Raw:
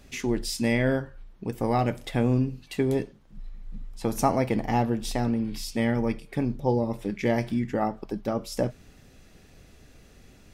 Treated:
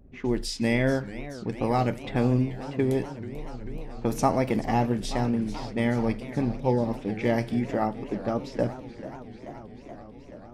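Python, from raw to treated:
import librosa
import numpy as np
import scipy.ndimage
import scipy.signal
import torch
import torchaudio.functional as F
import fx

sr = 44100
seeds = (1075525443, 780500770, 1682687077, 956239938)

y = fx.env_lowpass(x, sr, base_hz=420.0, full_db=-23.5)
y = fx.wow_flutter(y, sr, seeds[0], rate_hz=2.1, depth_cents=29.0)
y = fx.echo_warbled(y, sr, ms=434, feedback_pct=78, rate_hz=2.8, cents=216, wet_db=-15)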